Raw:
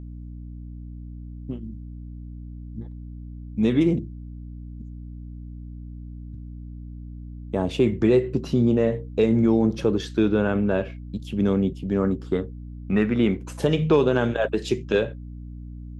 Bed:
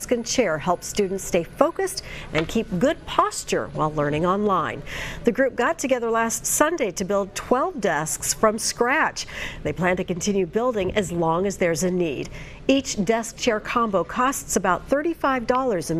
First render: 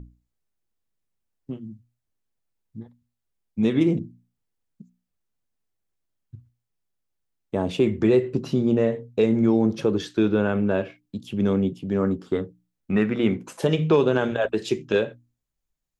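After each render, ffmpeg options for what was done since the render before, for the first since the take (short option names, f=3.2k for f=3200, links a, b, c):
-af "bandreject=f=60:t=h:w=6,bandreject=f=120:t=h:w=6,bandreject=f=180:t=h:w=6,bandreject=f=240:t=h:w=6,bandreject=f=300:t=h:w=6"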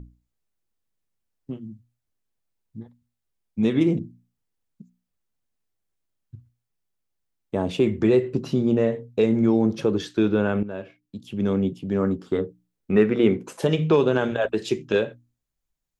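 -filter_complex "[0:a]asettb=1/sr,asplit=3[a][b][c];[a]atrim=end=12.384[d];[b]atrim=start=12.38:end=13.57,asetpts=PTS-STARTPTS,afade=t=in:d=0.004:c=qsin,afade=t=out:st=1.186:d=0.004:c=qsin,equalizer=f=420:t=o:w=0.59:g=8[e];[c]atrim=start=13.566[f];[d][e]acrossfade=d=0.004:c1=hsin:c2=qsin[g];[g][f]acrossfade=d=0.004:c1=qsin:c2=hsin,asplit=2[h][i];[h]atrim=end=10.63,asetpts=PTS-STARTPTS,afade=t=out:st=10.626:d=0.004:c=hsin:silence=0.223872[j];[i]atrim=start=10.63,asetpts=PTS-STARTPTS,afade=t=in:d=1.05:silence=0.223872[k];[j][k]concat=n=2:v=0:a=1"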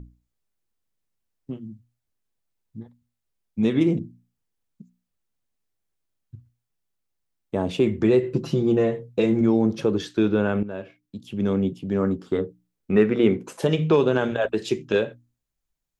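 -filter_complex "[0:a]asettb=1/sr,asplit=3[a][b][c];[a]atrim=end=8.224[d];[b]atrim=start=8.22:end=9.41,asetpts=PTS-STARTPTS,afade=t=in:d=0.004:c=qsin,afade=t=out:st=1.186:d=0.004:c=qsin,aecho=1:1:5.9:0.65,atrim=end_sample=52479[e];[c]atrim=start=9.406[f];[d][e]acrossfade=d=0.004:c1=hsin:c2=qsin[g];[g][f]acrossfade=d=0.004:c1=qsin:c2=hsin"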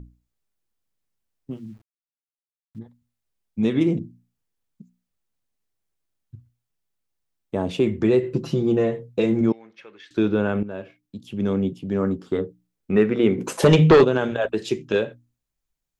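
-filter_complex "[0:a]asettb=1/sr,asplit=3[a][b][c];[a]atrim=end=1.514[d];[b]atrim=start=1.51:end=2.79,asetpts=PTS-STARTPTS,afade=t=in:d=0.004:c=qsin,afade=t=out:st=1.276:d=0.004:c=qsin,aeval=exprs='val(0)*gte(abs(val(0)),0.00188)':c=same[e];[c]atrim=start=2.786[f];[d][e]acrossfade=d=0.004:c1=hsin:c2=qsin[g];[g][f]acrossfade=d=0.004:c1=qsin:c2=hsin,asettb=1/sr,asplit=3[h][i][j];[h]atrim=end=9.524[k];[i]atrim=start=9.52:end=10.11,asetpts=PTS-STARTPTS,afade=t=in:d=0.004:c=qsin,afade=t=out:st=0.586:d=0.004:c=qsin,bandpass=f=2.1k:t=q:w=3.6[l];[j]atrim=start=10.106[m];[k][l]acrossfade=d=0.004:c1=hsin:c2=qsin[n];[n][m]acrossfade=d=0.004:c1=qsin:c2=hsin,asplit=3[o][p][q];[o]afade=t=out:st=13.37:d=0.02[r];[p]aeval=exprs='0.422*sin(PI/2*2*val(0)/0.422)':c=same,afade=t=in:st=13.37:d=0.02,afade=t=out:st=14.03:d=0.02[s];[q]afade=t=in:st=14.03:d=0.02[t];[r][s][t]amix=inputs=3:normalize=0"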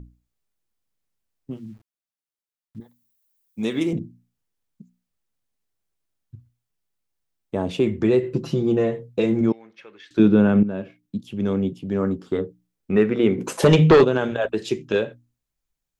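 -filter_complex "[0:a]asettb=1/sr,asplit=3[a][b][c];[a]atrim=end=2.804[d];[b]atrim=start=2.8:end=3.93,asetpts=PTS-STARTPTS,afade=t=in:d=0.004:c=qsin,afade=t=out:st=1.126:d=0.004:c=qsin,aemphasis=mode=production:type=bsi[e];[c]atrim=start=3.926[f];[d][e]acrossfade=d=0.004:c1=hsin:c2=qsin[g];[g][f]acrossfade=d=0.004:c1=qsin:c2=hsin,asettb=1/sr,asplit=3[h][i][j];[h]atrim=end=10.194[k];[i]atrim=start=10.19:end=11.21,asetpts=PTS-STARTPTS,afade=t=in:d=0.004:c=qsin,afade=t=out:st=1.016:d=0.004:c=qsin,equalizer=f=190:w=1:g=9.5[l];[j]atrim=start=11.206[m];[k][l]acrossfade=d=0.004:c1=hsin:c2=qsin[n];[n][m]acrossfade=d=0.004:c1=qsin:c2=hsin"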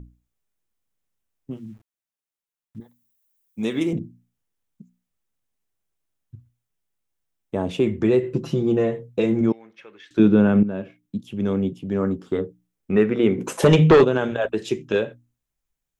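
-af "equalizer=f=4.5k:t=o:w=0.4:g=-4.5"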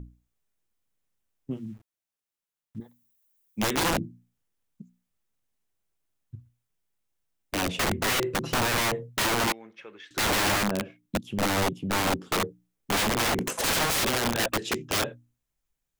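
-af "aeval=exprs='(mod(10*val(0)+1,2)-1)/10':c=same"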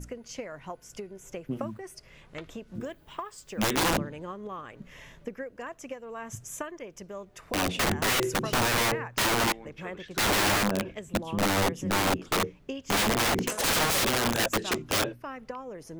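-filter_complex "[1:a]volume=-18dB[a];[0:a][a]amix=inputs=2:normalize=0"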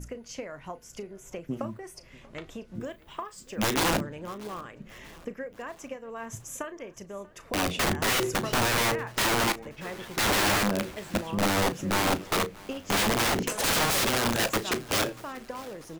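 -filter_complex "[0:a]asplit=2[a][b];[b]adelay=35,volume=-13.5dB[c];[a][c]amix=inputs=2:normalize=0,aecho=1:1:638|1276|1914|2552:0.0794|0.0429|0.0232|0.0125"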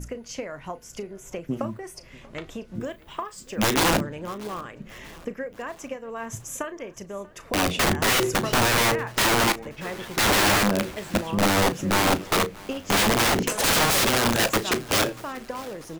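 -af "volume=4.5dB"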